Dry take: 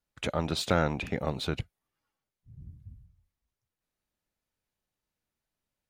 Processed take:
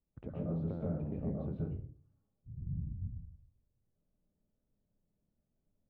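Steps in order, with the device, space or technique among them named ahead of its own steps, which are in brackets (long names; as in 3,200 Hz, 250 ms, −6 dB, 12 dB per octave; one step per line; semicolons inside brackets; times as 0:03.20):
television next door (downward compressor 5 to 1, threshold −42 dBFS, peak gain reduction 19.5 dB; low-pass filter 400 Hz 12 dB per octave; convolution reverb RT60 0.45 s, pre-delay 118 ms, DRR −4 dB)
level +4 dB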